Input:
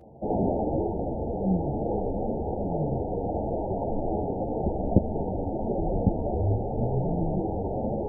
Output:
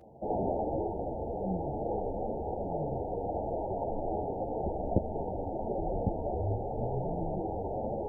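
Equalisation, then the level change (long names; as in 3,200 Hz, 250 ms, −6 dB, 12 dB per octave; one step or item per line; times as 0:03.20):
low-shelf EQ 500 Hz −7 dB
dynamic equaliser 210 Hz, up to −4 dB, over −42 dBFS, Q 1.1
0.0 dB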